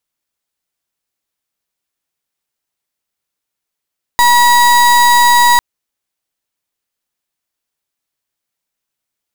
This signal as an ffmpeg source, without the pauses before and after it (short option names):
-f lavfi -i "aevalsrc='0.398*(2*lt(mod(964*t,1),0.34)-1)':d=1.4:s=44100"